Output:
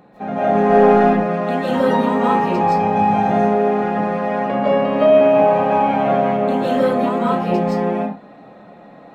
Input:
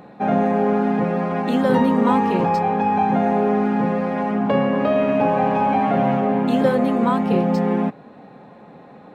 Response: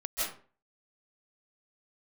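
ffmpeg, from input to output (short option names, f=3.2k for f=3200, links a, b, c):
-filter_complex "[0:a]asettb=1/sr,asplit=3[a][b][c];[a]atrim=end=0.554[d];[b]atrim=start=0.55:end=0.97,asetpts=PTS-STARTPTS,afade=t=in:d=0.004:c=qsin,afade=t=out:st=0.416:d=0.004:c=qsin,acontrast=78[e];[c]atrim=start=0.966[f];[d][e]acrossfade=d=0.004:c1=hsin:c2=qsin[g];[g][f]acrossfade=d=0.004:c1=qsin:c2=hsin,asettb=1/sr,asplit=3[h][i][j];[h]atrim=end=2.634[k];[i]atrim=start=2.63:end=3.31,asetpts=PTS-STARTPTS,afade=t=in:d=0.004:c=qsin,afade=t=out:st=0.676:d=0.004:c=qsin,bass=f=250:g=7,treble=f=4k:g=6[l];[j]atrim=start=3.306[m];[k][l]acrossfade=d=0.004:c1=hsin:c2=qsin[n];[n][m]acrossfade=d=0.004:c1=qsin:c2=hsin[o];[1:a]atrim=start_sample=2205,afade=t=out:st=0.34:d=0.01,atrim=end_sample=15435[p];[o][p]afir=irnorm=-1:irlink=0,volume=-3.5dB"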